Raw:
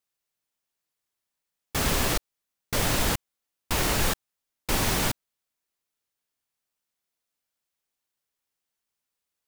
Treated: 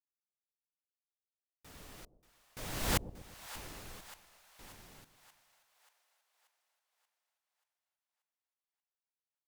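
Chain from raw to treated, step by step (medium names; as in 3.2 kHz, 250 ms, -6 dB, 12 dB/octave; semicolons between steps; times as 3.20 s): Doppler pass-by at 2.99 s, 20 m/s, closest 1.1 m; two-band feedback delay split 650 Hz, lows 122 ms, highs 583 ms, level -13.5 dB; trim -1.5 dB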